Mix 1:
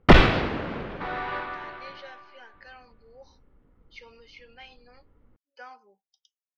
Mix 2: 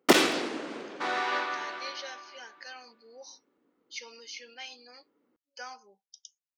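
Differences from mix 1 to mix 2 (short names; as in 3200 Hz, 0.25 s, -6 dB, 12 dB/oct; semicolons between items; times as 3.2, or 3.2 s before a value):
first sound: add ladder high-pass 250 Hz, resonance 45%; master: remove air absorption 340 m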